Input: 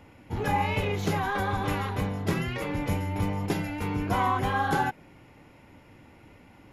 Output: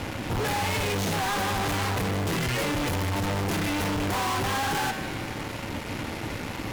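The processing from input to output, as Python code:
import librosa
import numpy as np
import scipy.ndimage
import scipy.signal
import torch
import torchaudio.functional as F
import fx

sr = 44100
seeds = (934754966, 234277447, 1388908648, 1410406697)

y = fx.comb(x, sr, ms=4.1, depth=0.3, at=(0.87, 1.5))
y = fx.fuzz(y, sr, gain_db=53.0, gate_db=-54.0)
y = fx.comb_fb(y, sr, f0_hz=110.0, decay_s=1.8, harmonics='all', damping=0.0, mix_pct=70)
y = 10.0 ** (-24.5 / 20.0) * np.tanh(y / 10.0 ** (-24.5 / 20.0))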